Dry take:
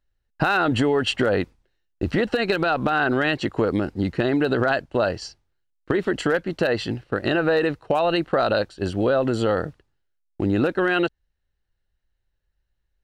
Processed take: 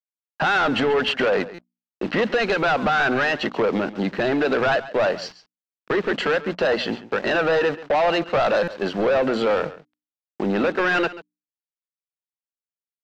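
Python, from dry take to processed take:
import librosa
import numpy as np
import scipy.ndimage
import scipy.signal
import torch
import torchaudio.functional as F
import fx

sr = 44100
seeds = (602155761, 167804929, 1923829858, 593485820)

y = fx.delta_hold(x, sr, step_db=-41.5)
y = scipy.signal.sosfilt(scipy.signal.butter(4, 210.0, 'highpass', fs=sr, output='sos'), y)
y = fx.peak_eq(y, sr, hz=310.0, db=-10.0, octaves=0.82)
y = fx.hum_notches(y, sr, base_hz=60, count=5)
y = fx.leveller(y, sr, passes=2)
y = 10.0 ** (-18.5 / 20.0) * np.tanh(y / 10.0 ** (-18.5 / 20.0))
y = fx.air_absorb(y, sr, metres=190.0)
y = y + 10.0 ** (-16.5 / 20.0) * np.pad(y, (int(137 * sr / 1000.0), 0))[:len(y)]
y = fx.buffer_glitch(y, sr, at_s=(1.54, 8.63), block=256, repeats=7)
y = y * 10.0 ** (3.5 / 20.0)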